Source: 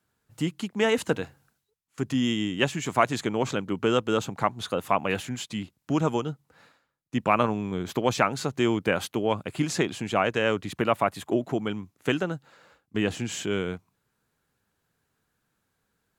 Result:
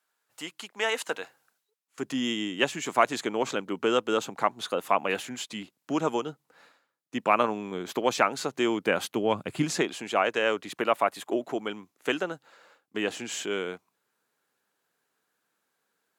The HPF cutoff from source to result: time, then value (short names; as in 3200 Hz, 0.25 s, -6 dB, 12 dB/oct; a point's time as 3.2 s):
1.06 s 680 Hz
2.14 s 290 Hz
8.7 s 290 Hz
9.58 s 110 Hz
9.91 s 350 Hz